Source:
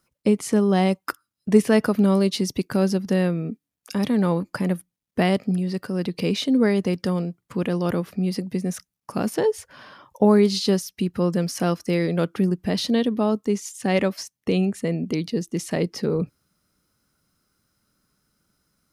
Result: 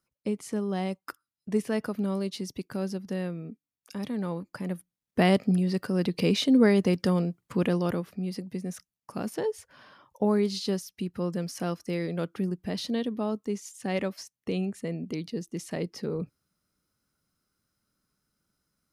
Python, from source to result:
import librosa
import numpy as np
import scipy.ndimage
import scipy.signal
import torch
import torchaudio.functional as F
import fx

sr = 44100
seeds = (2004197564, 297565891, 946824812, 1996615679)

y = fx.gain(x, sr, db=fx.line((4.57, -11.0), (5.29, -1.0), (7.68, -1.0), (8.11, -8.5)))